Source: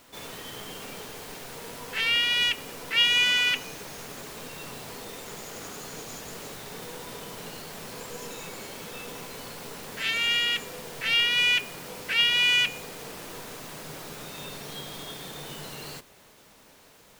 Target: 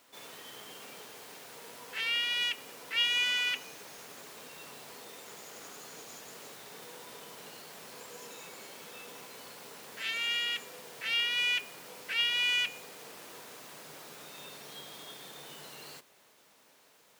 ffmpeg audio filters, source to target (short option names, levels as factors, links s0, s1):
-af "highpass=f=370:p=1,volume=0.447"